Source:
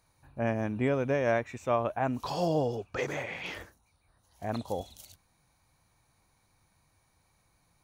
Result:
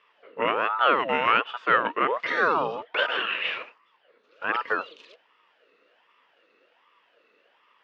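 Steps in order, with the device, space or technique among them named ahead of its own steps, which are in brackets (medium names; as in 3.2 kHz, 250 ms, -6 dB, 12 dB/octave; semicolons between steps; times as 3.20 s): voice changer toy (ring modulator with a swept carrier 710 Hz, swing 55%, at 1.3 Hz; cabinet simulation 420–3700 Hz, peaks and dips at 480 Hz +6 dB, 790 Hz -7 dB, 1.3 kHz +3 dB, 1.8 kHz +3 dB, 2.7 kHz +9 dB); trim +9 dB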